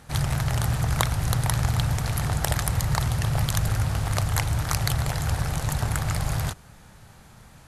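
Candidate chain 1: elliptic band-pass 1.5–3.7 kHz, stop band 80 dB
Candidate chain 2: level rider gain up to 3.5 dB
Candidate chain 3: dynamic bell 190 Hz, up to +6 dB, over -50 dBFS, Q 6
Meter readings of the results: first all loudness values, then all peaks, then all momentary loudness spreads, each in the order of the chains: -37.5 LUFS, -23.5 LUFS, -25.5 LUFS; -10.0 dBFS, -1.5 dBFS, -1.5 dBFS; 5 LU, 3 LU, 3 LU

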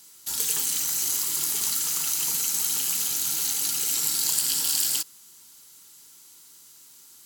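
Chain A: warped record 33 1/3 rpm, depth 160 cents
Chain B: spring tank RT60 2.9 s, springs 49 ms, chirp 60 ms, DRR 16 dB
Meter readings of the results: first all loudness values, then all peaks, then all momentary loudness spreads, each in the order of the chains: -23.0 LUFS, -23.0 LUFS; -6.0 dBFS, -6.0 dBFS; 3 LU, 3 LU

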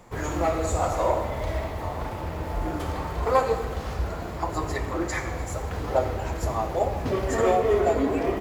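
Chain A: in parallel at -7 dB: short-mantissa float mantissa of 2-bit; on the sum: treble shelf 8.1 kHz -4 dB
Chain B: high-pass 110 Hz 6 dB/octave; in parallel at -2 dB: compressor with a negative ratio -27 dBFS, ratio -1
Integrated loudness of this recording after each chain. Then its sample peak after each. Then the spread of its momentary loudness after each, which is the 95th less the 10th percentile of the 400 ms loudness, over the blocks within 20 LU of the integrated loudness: -23.5 LUFS, -23.5 LUFS; -5.5 dBFS, -8.0 dBFS; 10 LU, 7 LU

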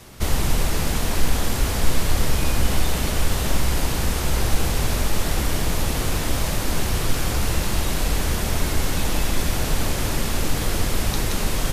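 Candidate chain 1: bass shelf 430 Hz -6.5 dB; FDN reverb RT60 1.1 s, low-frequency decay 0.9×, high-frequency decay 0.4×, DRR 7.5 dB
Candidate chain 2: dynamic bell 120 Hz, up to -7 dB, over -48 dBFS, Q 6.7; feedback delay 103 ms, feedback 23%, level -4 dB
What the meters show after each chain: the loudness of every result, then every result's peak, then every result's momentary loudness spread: -26.0 LUFS, -23.0 LUFS; -9.0 dBFS, -3.5 dBFS; 1 LU, 1 LU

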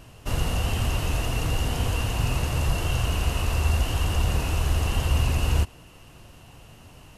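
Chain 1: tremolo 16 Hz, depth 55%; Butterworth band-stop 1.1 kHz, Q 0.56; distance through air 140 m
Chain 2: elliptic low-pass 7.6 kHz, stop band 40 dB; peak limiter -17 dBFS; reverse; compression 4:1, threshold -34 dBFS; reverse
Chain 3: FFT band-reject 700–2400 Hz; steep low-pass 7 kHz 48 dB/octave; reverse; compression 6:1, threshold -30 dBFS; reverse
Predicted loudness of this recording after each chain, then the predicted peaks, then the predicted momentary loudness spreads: -29.5 LUFS, -37.5 LUFS, -35.5 LUFS; -12.5 dBFS, -25.0 dBFS, -21.5 dBFS; 4 LU, 13 LU, 15 LU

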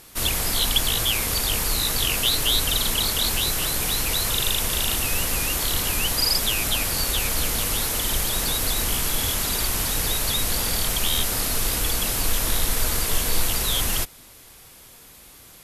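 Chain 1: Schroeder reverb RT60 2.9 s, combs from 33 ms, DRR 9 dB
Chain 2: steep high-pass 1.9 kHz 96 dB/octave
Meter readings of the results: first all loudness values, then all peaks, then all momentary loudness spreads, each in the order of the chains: -21.0 LUFS, -22.0 LUFS; -7.0 dBFS, -8.0 dBFS; 3 LU, 3 LU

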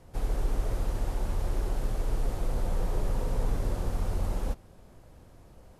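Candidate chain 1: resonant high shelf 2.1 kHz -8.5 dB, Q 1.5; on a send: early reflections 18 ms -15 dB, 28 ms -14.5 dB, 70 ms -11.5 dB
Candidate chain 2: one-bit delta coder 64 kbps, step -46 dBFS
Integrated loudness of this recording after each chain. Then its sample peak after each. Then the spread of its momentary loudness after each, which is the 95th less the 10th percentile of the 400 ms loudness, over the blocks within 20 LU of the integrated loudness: -32.0 LUFS, -33.5 LUFS; -14.5 dBFS, -16.0 dBFS; 2 LU, 20 LU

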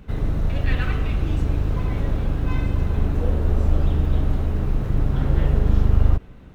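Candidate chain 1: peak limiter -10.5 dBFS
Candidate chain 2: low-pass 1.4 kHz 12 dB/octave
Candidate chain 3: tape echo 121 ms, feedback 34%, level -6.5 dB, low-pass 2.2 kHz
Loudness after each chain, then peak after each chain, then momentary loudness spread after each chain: -24.0 LUFS, -23.0 LUFS, -22.5 LUFS; -10.5 dBFS, -4.0 dBFS, -3.5 dBFS; 2 LU, 5 LU, 5 LU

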